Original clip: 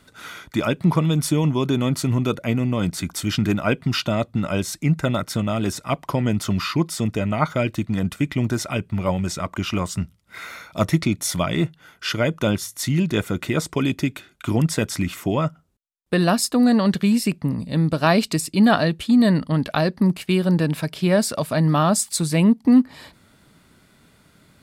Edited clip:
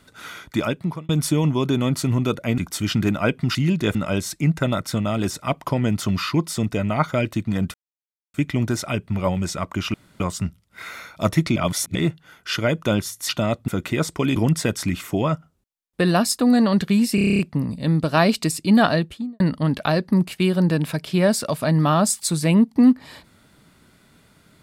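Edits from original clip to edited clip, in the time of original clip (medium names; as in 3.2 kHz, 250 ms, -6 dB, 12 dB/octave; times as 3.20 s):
0.58–1.09 s: fade out
2.58–3.01 s: delete
3.98–4.37 s: swap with 12.85–13.25 s
8.16 s: insert silence 0.60 s
9.76 s: insert room tone 0.26 s
11.12–11.51 s: reverse
13.93–14.49 s: delete
17.28 s: stutter 0.03 s, 9 plays
18.82–19.29 s: studio fade out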